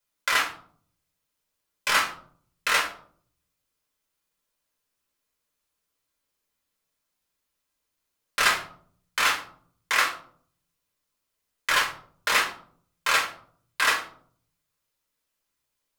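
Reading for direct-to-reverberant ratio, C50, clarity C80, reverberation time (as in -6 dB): -2.0 dB, 10.0 dB, 14.5 dB, 0.55 s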